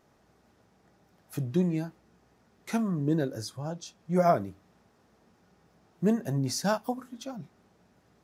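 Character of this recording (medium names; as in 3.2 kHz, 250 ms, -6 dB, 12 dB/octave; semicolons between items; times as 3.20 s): noise floor -66 dBFS; spectral tilt -6.5 dB/octave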